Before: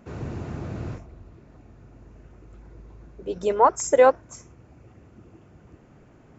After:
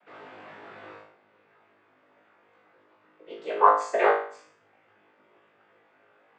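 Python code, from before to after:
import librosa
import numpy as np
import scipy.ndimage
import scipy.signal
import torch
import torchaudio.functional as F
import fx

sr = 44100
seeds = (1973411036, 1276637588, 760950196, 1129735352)

p1 = scipy.signal.sosfilt(scipy.signal.butter(2, 780.0, 'highpass', fs=sr, output='sos'), x)
p2 = fx.high_shelf(p1, sr, hz=2100.0, db=10.0)
p3 = fx.noise_vocoder(p2, sr, seeds[0], bands=16)
p4 = fx.air_absorb(p3, sr, metres=480.0)
p5 = p4 + fx.room_flutter(p4, sr, wall_m=3.3, rt60_s=0.49, dry=0)
y = p5 * 10.0 ** (-1.0 / 20.0)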